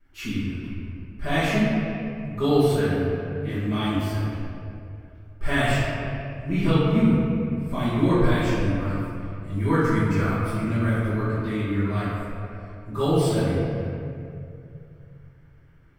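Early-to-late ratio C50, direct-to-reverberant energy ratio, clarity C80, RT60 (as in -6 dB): -3.0 dB, -14.5 dB, -1.0 dB, 2.5 s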